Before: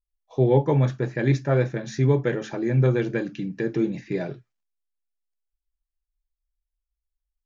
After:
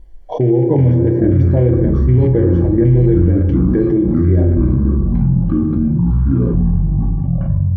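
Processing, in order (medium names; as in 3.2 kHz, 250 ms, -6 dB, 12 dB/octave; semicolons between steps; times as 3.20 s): rattle on loud lows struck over -21 dBFS, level -22 dBFS; peak limiter -15 dBFS, peak gain reduction 6.5 dB; tremolo saw down 1.5 Hz, depth 70%; boxcar filter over 33 samples; ever faster or slower copies 205 ms, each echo -6 st, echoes 3; reverberation RT60 1.0 s, pre-delay 3 ms, DRR 4 dB; speed mistake 25 fps video run at 24 fps; level flattener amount 70%; trim +6 dB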